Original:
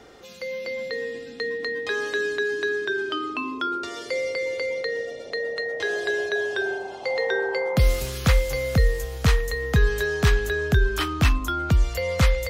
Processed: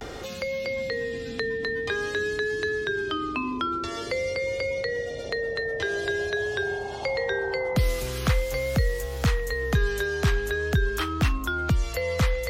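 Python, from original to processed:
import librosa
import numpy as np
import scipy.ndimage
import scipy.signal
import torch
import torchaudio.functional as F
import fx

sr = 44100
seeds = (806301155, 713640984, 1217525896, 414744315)

y = fx.vibrato(x, sr, rate_hz=0.47, depth_cents=51.0)
y = fx.band_squash(y, sr, depth_pct=70)
y = y * 10.0 ** (-2.5 / 20.0)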